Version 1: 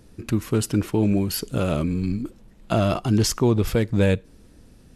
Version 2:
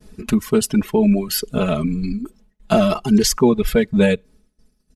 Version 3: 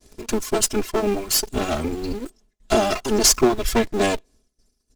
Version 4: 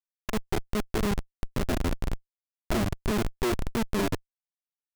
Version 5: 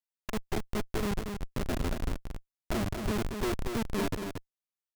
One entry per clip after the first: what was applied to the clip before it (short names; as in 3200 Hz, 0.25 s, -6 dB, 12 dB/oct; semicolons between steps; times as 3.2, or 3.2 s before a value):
reverb removal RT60 1.7 s; expander -50 dBFS; comb 4.7 ms, depth 98%; gain +3.5 dB
minimum comb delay 2.9 ms; bell 6500 Hz +10 dB 1.3 oct; in parallel at -3.5 dB: bit-crush 6-bit; on the sum: gain -5.5 dB
treble ducked by the level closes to 490 Hz, closed at -17 dBFS; thin delay 0.188 s, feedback 75%, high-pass 2800 Hz, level -7.5 dB; Schmitt trigger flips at -22 dBFS
echo 0.23 s -6 dB; gain -4.5 dB